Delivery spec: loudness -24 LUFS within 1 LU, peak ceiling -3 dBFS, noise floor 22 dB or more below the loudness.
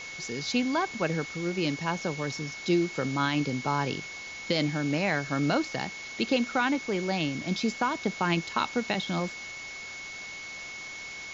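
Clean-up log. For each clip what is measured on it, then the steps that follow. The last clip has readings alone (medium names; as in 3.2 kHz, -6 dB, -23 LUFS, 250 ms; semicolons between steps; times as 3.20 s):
steady tone 2.2 kHz; tone level -39 dBFS; noise floor -41 dBFS; noise floor target -52 dBFS; loudness -29.5 LUFS; peak level -13.5 dBFS; loudness target -24.0 LUFS
-> band-stop 2.2 kHz, Q 30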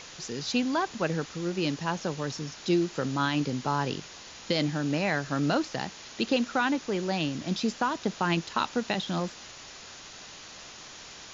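steady tone not found; noise floor -46 dBFS; noise floor target -52 dBFS
-> noise print and reduce 6 dB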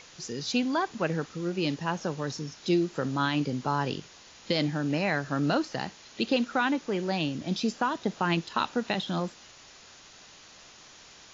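noise floor -52 dBFS; loudness -29.5 LUFS; peak level -14.0 dBFS; loudness target -24.0 LUFS
-> trim +5.5 dB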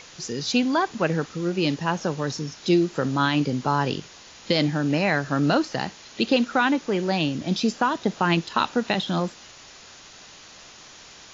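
loudness -24.0 LUFS; peak level -8.5 dBFS; noise floor -47 dBFS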